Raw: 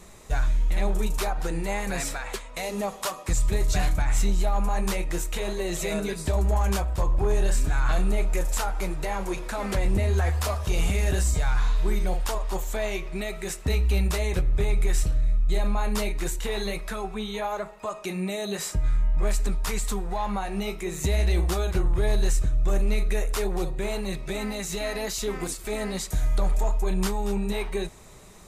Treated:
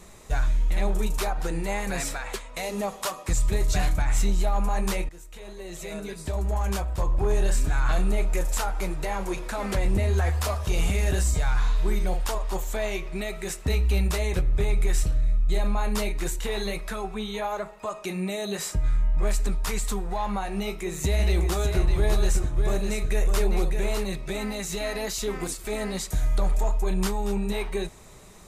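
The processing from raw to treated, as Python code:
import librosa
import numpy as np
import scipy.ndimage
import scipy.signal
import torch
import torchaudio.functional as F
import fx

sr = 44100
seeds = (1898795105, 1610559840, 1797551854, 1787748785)

y = fx.echo_single(x, sr, ms=605, db=-6.0, at=(21.18, 24.03), fade=0.02)
y = fx.edit(y, sr, fx.fade_in_from(start_s=5.09, length_s=2.25, floor_db=-20.0), tone=tone)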